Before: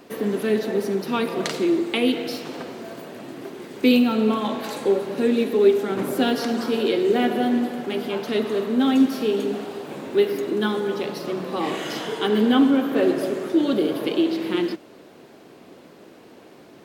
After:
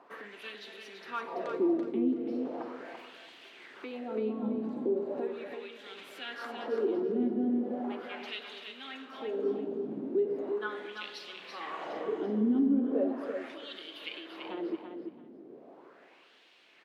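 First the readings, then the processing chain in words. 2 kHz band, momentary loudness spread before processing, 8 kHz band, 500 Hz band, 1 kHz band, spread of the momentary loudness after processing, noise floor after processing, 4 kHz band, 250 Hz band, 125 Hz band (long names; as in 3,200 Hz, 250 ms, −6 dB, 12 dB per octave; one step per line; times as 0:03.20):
−12.0 dB, 13 LU, below −20 dB, −12.0 dB, −12.5 dB, 17 LU, −58 dBFS, −14.0 dB, −11.5 dB, −14.5 dB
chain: downward compressor 3 to 1, threshold −25 dBFS, peak gain reduction 11 dB
LFO wah 0.38 Hz 230–3,300 Hz, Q 2.6
repeating echo 335 ms, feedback 20%, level −6.5 dB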